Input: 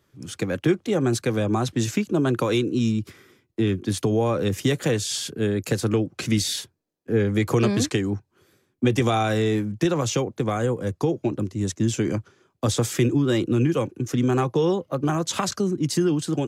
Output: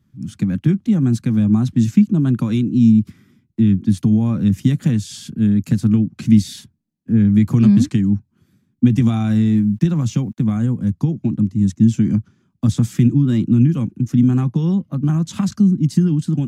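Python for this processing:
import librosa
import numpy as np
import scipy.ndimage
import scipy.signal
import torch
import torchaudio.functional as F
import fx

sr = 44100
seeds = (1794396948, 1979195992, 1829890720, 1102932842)

y = fx.quant_dither(x, sr, seeds[0], bits=10, dither='none', at=(8.85, 10.44))
y = fx.low_shelf_res(y, sr, hz=310.0, db=12.5, q=3.0)
y = F.gain(torch.from_numpy(y), -6.5).numpy()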